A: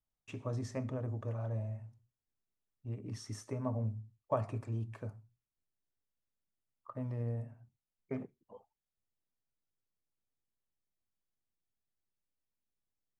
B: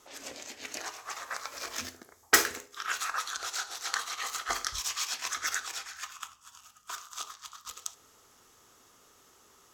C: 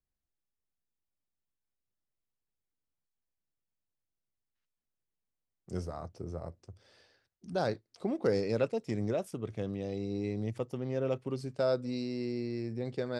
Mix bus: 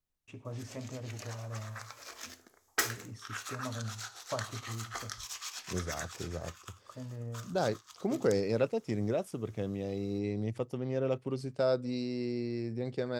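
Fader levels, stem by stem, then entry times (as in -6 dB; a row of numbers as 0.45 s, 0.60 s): -4.0 dB, -8.5 dB, +0.5 dB; 0.00 s, 0.45 s, 0.00 s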